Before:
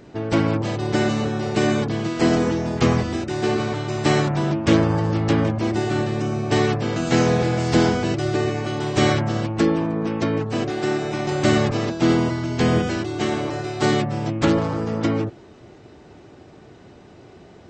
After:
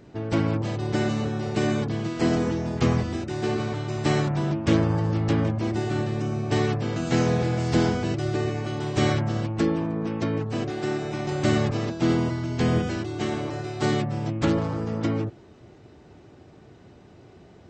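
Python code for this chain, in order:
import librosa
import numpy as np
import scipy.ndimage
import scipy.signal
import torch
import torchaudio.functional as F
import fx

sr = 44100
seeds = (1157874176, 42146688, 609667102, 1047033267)

y = fx.peak_eq(x, sr, hz=89.0, db=4.5, octaves=2.5)
y = F.gain(torch.from_numpy(y), -6.0).numpy()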